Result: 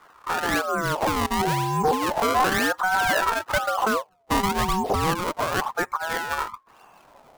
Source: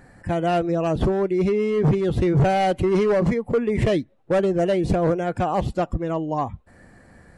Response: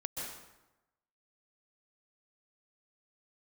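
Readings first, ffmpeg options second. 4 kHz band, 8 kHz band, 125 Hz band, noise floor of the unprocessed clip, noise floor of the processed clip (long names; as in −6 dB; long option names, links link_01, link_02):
+8.0 dB, can't be measured, −9.0 dB, −53 dBFS, −56 dBFS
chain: -af "acrusher=samples=27:mix=1:aa=0.000001:lfo=1:lforange=43.2:lforate=0.98,aeval=exprs='val(0)*sin(2*PI*860*n/s+860*0.35/0.32*sin(2*PI*0.32*n/s))':channel_layout=same"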